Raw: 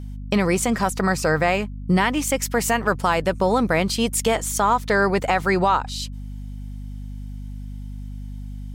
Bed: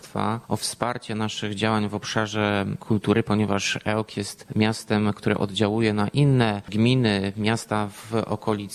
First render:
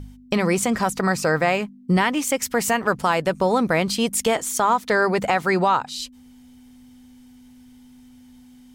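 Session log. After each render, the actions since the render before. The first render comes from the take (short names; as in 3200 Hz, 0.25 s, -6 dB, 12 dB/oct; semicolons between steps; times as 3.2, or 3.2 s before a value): de-hum 50 Hz, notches 4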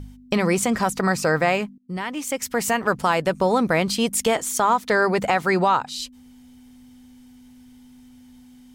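1.78–3.13 fade in equal-power, from -21.5 dB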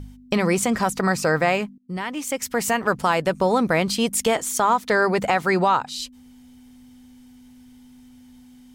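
nothing audible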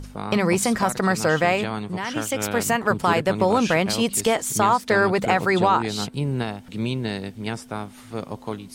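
add bed -6.5 dB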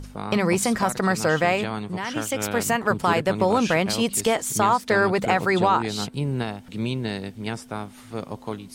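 gain -1 dB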